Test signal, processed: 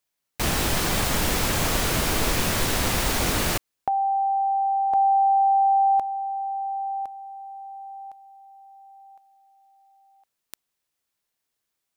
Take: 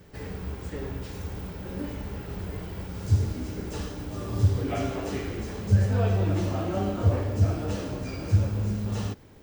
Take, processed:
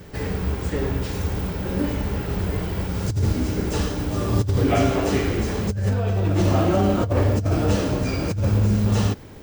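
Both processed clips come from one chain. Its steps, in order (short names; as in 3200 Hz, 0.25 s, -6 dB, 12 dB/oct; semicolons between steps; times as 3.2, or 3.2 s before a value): negative-ratio compressor -27 dBFS, ratio -1; gain +8 dB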